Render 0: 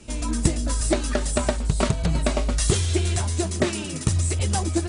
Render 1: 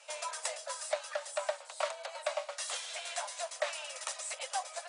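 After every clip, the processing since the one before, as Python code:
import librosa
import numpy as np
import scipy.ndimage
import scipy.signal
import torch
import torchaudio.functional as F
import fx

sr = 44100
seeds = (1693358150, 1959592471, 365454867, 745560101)

y = scipy.signal.sosfilt(scipy.signal.butter(16, 530.0, 'highpass', fs=sr, output='sos'), x)
y = fx.high_shelf(y, sr, hz=5700.0, db=-8.5)
y = fx.rider(y, sr, range_db=10, speed_s=0.5)
y = y * librosa.db_to_amplitude(-6.5)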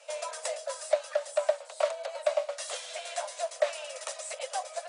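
y = fx.band_shelf(x, sr, hz=510.0, db=9.0, octaves=1.0)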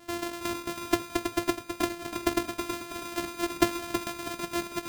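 y = np.r_[np.sort(x[:len(x) // 128 * 128].reshape(-1, 128), axis=1).ravel(), x[len(x) // 128 * 128:]]
y = fx.rider(y, sr, range_db=10, speed_s=2.0)
y = fx.echo_feedback(y, sr, ms=323, feedback_pct=40, wet_db=-7.0)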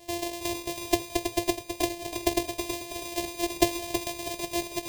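y = fx.fixed_phaser(x, sr, hz=560.0, stages=4)
y = y * librosa.db_to_amplitude(5.0)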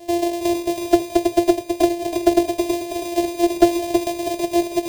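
y = 10.0 ** (-14.5 / 20.0) * np.tanh(x / 10.0 ** (-14.5 / 20.0))
y = fx.small_body(y, sr, hz=(350.0, 650.0, 1500.0), ring_ms=30, db=11)
y = y * librosa.db_to_amplitude(3.5)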